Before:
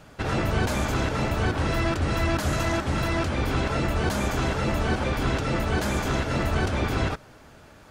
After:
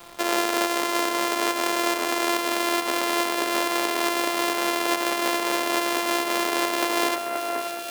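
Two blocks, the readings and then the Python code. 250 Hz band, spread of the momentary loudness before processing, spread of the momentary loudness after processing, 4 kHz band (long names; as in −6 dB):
−0.5 dB, 1 LU, 1 LU, +7.5 dB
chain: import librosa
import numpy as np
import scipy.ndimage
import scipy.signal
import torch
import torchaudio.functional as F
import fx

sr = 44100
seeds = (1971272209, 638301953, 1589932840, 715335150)

y = np.r_[np.sort(x[:len(x) // 128 * 128].reshape(-1, 128), axis=1).ravel(), x[len(x) // 128 * 128:]]
y = scipy.signal.sosfilt(scipy.signal.butter(4, 370.0, 'highpass', fs=sr, output='sos'), y)
y = fx.echo_alternate(y, sr, ms=529, hz=2300.0, feedback_pct=71, wet_db=-9.0)
y = fx.rider(y, sr, range_db=4, speed_s=0.5)
y = fx.quant_dither(y, sr, seeds[0], bits=8, dither='none')
y = F.gain(torch.from_numpy(y), 4.5).numpy()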